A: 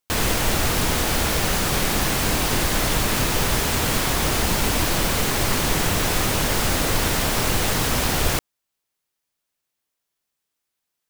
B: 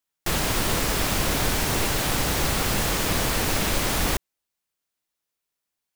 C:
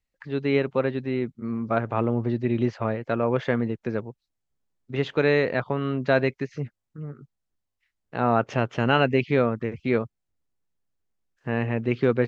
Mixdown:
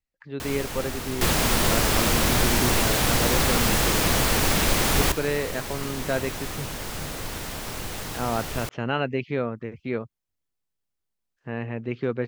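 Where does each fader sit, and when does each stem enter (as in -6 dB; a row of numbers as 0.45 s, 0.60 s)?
-12.0 dB, +2.0 dB, -5.5 dB; 0.30 s, 0.95 s, 0.00 s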